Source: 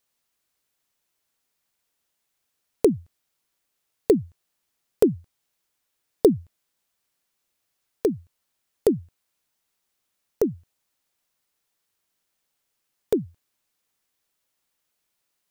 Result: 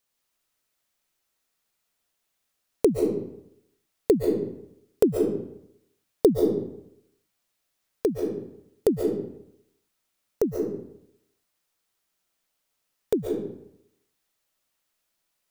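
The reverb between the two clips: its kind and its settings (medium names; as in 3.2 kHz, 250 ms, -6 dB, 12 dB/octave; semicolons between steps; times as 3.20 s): algorithmic reverb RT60 0.77 s, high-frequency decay 0.75×, pre-delay 100 ms, DRR 1 dB; trim -2 dB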